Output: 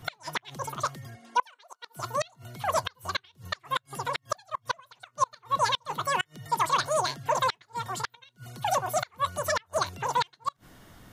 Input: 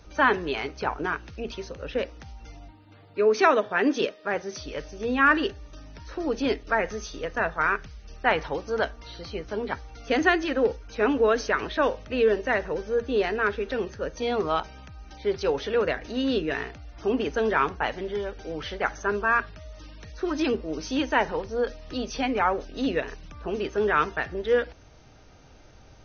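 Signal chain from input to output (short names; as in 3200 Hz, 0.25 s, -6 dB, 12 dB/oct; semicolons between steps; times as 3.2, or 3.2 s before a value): speed mistake 33 rpm record played at 78 rpm; flipped gate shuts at -13 dBFS, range -33 dB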